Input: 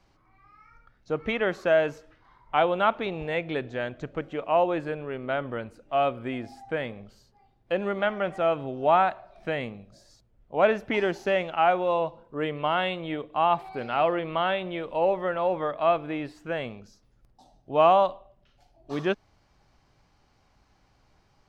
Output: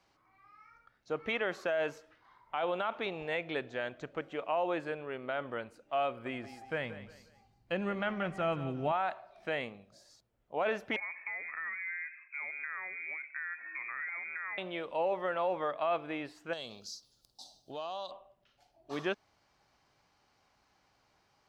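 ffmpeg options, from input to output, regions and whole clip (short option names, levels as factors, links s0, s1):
-filter_complex "[0:a]asettb=1/sr,asplit=3[s0][s1][s2];[s0]atrim=end=6.084[s3];[s1]atrim=start=6.08:end=8.92,asetpts=PTS-STARTPTS,afade=t=in:d=0.004:c=qsin,afade=t=out:st=2.836:d=0.004:c=qsin,asubboost=boost=9.5:cutoff=200,bandreject=f=3500:w=13,aecho=1:1:178|356|534:0.2|0.0698|0.0244,atrim=end_sample=125244[s4];[s2]atrim=start=8.916[s5];[s3][s4]acrossfade=d=0.004:c1=hsin:c2=qsin[s6];[s6][s5]acrossfade=d=0.004:c1=qsin:c2=hsin,asettb=1/sr,asplit=3[s7][s8][s9];[s7]atrim=end=10.964[s10];[s8]atrim=start=10.96:end=14.58,asetpts=PTS-STARTPTS,afade=t=in:d=0.004:c=qsin,afade=t=out:st=3.616:d=0.004:c=qsin,acompressor=threshold=0.0224:ratio=8:attack=3.2:release=140:knee=1:detection=peak,lowpass=f=2200:t=q:w=0.5098,lowpass=f=2200:t=q:w=0.6013,lowpass=f=2200:t=q:w=0.9,lowpass=f=2200:t=q:w=2.563,afreqshift=-2600[s11];[s9]atrim=start=14.576[s12];[s10][s11]acrossfade=d=0.004:c1=hsin:c2=qsin[s13];[s13][s12]acrossfade=d=0.004:c1=qsin:c2=hsin,asettb=1/sr,asplit=3[s14][s15][s16];[s14]atrim=end=16.534[s17];[s15]atrim=start=16.53:end=18.11,asetpts=PTS-STARTPTS,afade=t=in:d=0.004:c=qsin,afade=t=out:st=1.576:d=0.004:c=qsin,highshelf=f=3000:t=q:w=3:g=12.5,acompressor=threshold=0.0224:ratio=6:attack=3.2:release=140:knee=1:detection=peak[s18];[s16]atrim=start=18.106[s19];[s17][s18]acrossfade=d=0.004:c1=hsin:c2=qsin[s20];[s20][s19]acrossfade=d=0.004:c1=qsin:c2=hsin,highpass=f=79:p=1,lowshelf=f=340:g=-9.5,alimiter=limit=0.0944:level=0:latency=1:release=29,volume=0.75"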